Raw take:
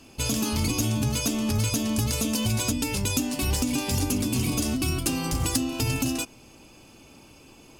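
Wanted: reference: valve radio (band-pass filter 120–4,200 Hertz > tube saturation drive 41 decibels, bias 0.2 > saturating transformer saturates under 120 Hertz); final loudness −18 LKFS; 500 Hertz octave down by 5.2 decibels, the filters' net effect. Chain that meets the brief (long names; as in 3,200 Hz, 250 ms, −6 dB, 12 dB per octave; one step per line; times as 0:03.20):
band-pass filter 120–4,200 Hz
parametric band 500 Hz −7 dB
tube saturation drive 41 dB, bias 0.2
saturating transformer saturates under 120 Hz
level +25 dB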